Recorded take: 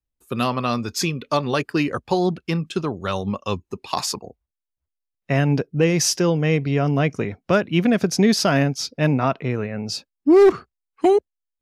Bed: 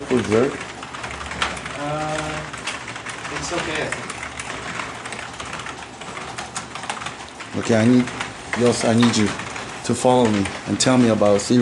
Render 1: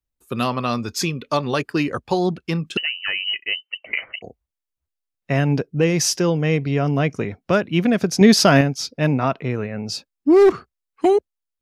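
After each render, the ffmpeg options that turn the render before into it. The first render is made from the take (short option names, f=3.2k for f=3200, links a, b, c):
-filter_complex "[0:a]asettb=1/sr,asplit=3[a][b][c];[a]atrim=end=2.774[d];[b]atrim=start=2.77:end=4.22,asetpts=PTS-STARTPTS,afade=t=in:d=0.004:c=qsin,afade=t=out:st=1.446:d=0.004:c=qsin,lowpass=f=2.6k:t=q:w=0.5098,lowpass=f=2.6k:t=q:w=0.6013,lowpass=f=2.6k:t=q:w=0.9,lowpass=f=2.6k:t=q:w=2.563,afreqshift=-3100[e];[c]atrim=start=4.216[f];[d][e]acrossfade=d=0.004:c1=hsin:c2=qsin[g];[g][f]acrossfade=d=0.004:c1=qsin:c2=hsin,asplit=3[h][i][j];[h]atrim=end=8.212[k];[i]atrim=start=8.208:end=8.612,asetpts=PTS-STARTPTS,volume=5dB[l];[j]atrim=start=8.608[m];[k][l]acrossfade=d=0.004:c1=hsin:c2=hsin[n];[n][m]acrossfade=d=0.004:c1=hsin:c2=hsin"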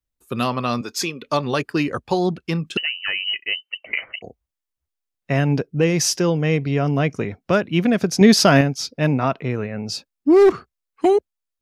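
-filter_complex "[0:a]asettb=1/sr,asplit=3[a][b][c];[a]atrim=end=0.814[d];[b]atrim=start=0.81:end=1.22,asetpts=PTS-STARTPTS,afade=t=in:d=0.004:c=qsin,afade=t=out:st=0.406:d=0.004:c=qsin,highpass=280[e];[c]atrim=start=1.216[f];[d][e]acrossfade=d=0.004:c1=hsin:c2=qsin[g];[g][f]acrossfade=d=0.004:c1=qsin:c2=hsin"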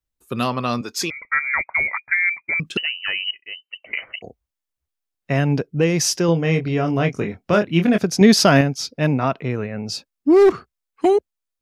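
-filter_complex "[0:a]asettb=1/sr,asplit=3[a][b][c];[a]atrim=end=1.104[d];[b]atrim=start=1.1:end=2.6,asetpts=PTS-STARTPTS,afade=t=in:d=0.004:c=qsin,afade=t=out:st=1.496:d=0.004:c=qsin,lowpass=f=2.1k:t=q:w=0.5098,lowpass=f=2.1k:t=q:w=0.6013,lowpass=f=2.1k:t=q:w=0.9,lowpass=f=2.1k:t=q:w=2.563,afreqshift=-2500[e];[c]atrim=start=2.596[f];[d][e]acrossfade=d=0.004:c1=hsin:c2=qsin[g];[g][f]acrossfade=d=0.004:c1=qsin:c2=hsin,asettb=1/sr,asplit=3[h][i][j];[h]atrim=end=6.264[k];[i]atrim=start=6.26:end=7.98,asetpts=PTS-STARTPTS,afade=t=in:d=0.004:c=qsin,afade=t=out:st=1.716:d=0.004:c=qsin,asplit=2[l][m];[m]adelay=24,volume=-6dB[n];[l][n]amix=inputs=2:normalize=0,atrim=end_sample=75852[o];[j]atrim=start=7.976[p];[k][o]acrossfade=d=0.004:c1=hsin:c2=qsin[q];[q][p]acrossfade=d=0.004:c1=qsin:c2=hsin,asplit=2[r][s];[r]atrim=end=3.31,asetpts=PTS-STARTPTS,afade=t=out:st=3.306:d=0.004:c=hsin:silence=0.105925[t];[s]atrim=start=3.31,asetpts=PTS-STARTPTS,afade=t=in:d=0.85:silence=0.105925[u];[t][u]concat=n=2:v=0:a=1"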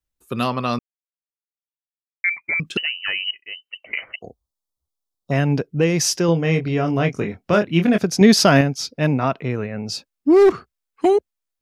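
-filter_complex "[0:a]asplit=3[a][b][c];[a]afade=t=out:st=4.15:d=0.02[d];[b]asuperstop=centerf=2100:order=8:qfactor=0.98,afade=t=in:st=4.15:d=0.02,afade=t=out:st=5.31:d=0.02[e];[c]afade=t=in:st=5.31:d=0.02[f];[d][e][f]amix=inputs=3:normalize=0,asplit=3[g][h][i];[g]atrim=end=0.79,asetpts=PTS-STARTPTS,afade=t=out:st=0.786:d=0.004:c=hsin[j];[h]atrim=start=0.79:end=2.24,asetpts=PTS-STARTPTS,volume=0[k];[i]atrim=start=2.24,asetpts=PTS-STARTPTS,afade=t=in:d=0.004:c=hsin[l];[j][k][l]concat=n=3:v=0:a=1"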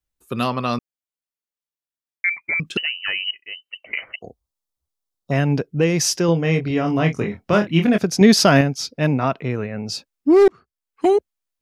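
-filter_complex "[0:a]asettb=1/sr,asplit=3[a][b][c];[a]atrim=end=6.684[d];[b]atrim=start=6.68:end=7.85,asetpts=PTS-STARTPTS,afade=t=in:d=0.004:c=qsin,afade=t=out:st=1.166:d=0.004:c=qsin,asplit=2[e][f];[f]adelay=25,volume=-6.5dB[g];[e][g]amix=inputs=2:normalize=0,atrim=end_sample=51597[h];[c]atrim=start=7.846[i];[d][h]acrossfade=d=0.004:c1=hsin:c2=qsin[j];[j][i]acrossfade=d=0.004:c1=qsin:c2=hsin,asplit=2[k][l];[k]atrim=end=10.48,asetpts=PTS-STARTPTS,afade=t=out:st=10.476:d=0.004:c=hsin[m];[l]atrim=start=10.48,asetpts=PTS-STARTPTS,afade=t=in:d=0.61[n];[m][n]concat=n=2:v=0:a=1"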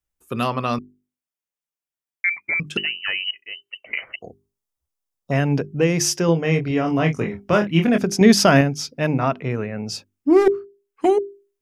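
-af "equalizer=f=4.1k:w=3.8:g=-6.5,bandreject=f=50:t=h:w=6,bandreject=f=100:t=h:w=6,bandreject=f=150:t=h:w=6,bandreject=f=200:t=h:w=6,bandreject=f=250:t=h:w=6,bandreject=f=300:t=h:w=6,bandreject=f=350:t=h:w=6,bandreject=f=400:t=h:w=6"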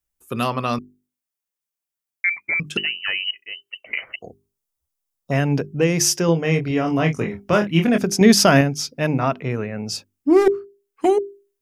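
-af "highshelf=f=6.9k:g=6.5"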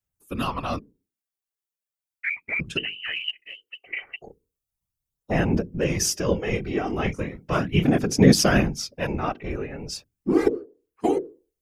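-af "afftfilt=real='hypot(re,im)*cos(2*PI*random(0))':imag='hypot(re,im)*sin(2*PI*random(1))':win_size=512:overlap=0.75,aphaser=in_gain=1:out_gain=1:delay=2.6:decay=0.35:speed=0.37:type=sinusoidal"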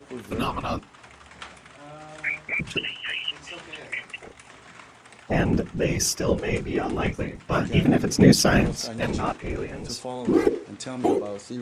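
-filter_complex "[1:a]volume=-18dB[a];[0:a][a]amix=inputs=2:normalize=0"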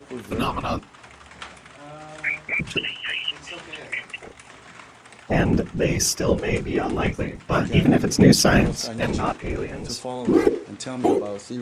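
-af "volume=2.5dB,alimiter=limit=-2dB:level=0:latency=1"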